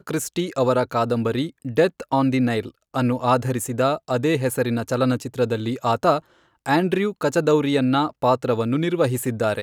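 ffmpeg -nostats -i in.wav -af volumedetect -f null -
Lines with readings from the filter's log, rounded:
mean_volume: -21.5 dB
max_volume: -5.6 dB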